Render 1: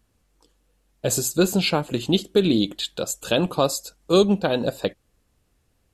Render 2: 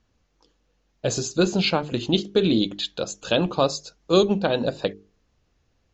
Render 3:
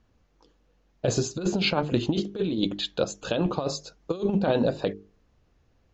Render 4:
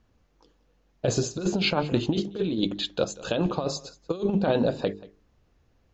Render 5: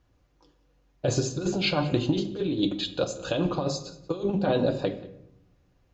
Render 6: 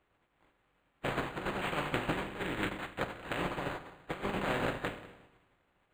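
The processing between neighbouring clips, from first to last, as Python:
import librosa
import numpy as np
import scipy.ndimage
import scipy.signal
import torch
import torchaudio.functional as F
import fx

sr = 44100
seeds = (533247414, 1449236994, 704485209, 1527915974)

y1 = scipy.signal.sosfilt(scipy.signal.butter(16, 6900.0, 'lowpass', fs=sr, output='sos'), x)
y1 = fx.hum_notches(y1, sr, base_hz=50, count=9)
y2 = fx.high_shelf(y1, sr, hz=2500.0, db=-8.0)
y2 = fx.over_compress(y2, sr, threshold_db=-23.0, ratio=-0.5)
y3 = y2 + 10.0 ** (-20.0 / 20.0) * np.pad(y2, (int(183 * sr / 1000.0), 0))[:len(y2)]
y4 = fx.notch_comb(y3, sr, f0_hz=220.0)
y4 = fx.room_shoebox(y4, sr, seeds[0], volume_m3=240.0, walls='mixed', distance_m=0.36)
y5 = fx.spec_flatten(y4, sr, power=0.31)
y5 = np.interp(np.arange(len(y5)), np.arange(len(y5))[::8], y5[::8])
y5 = F.gain(torch.from_numpy(y5), -7.5).numpy()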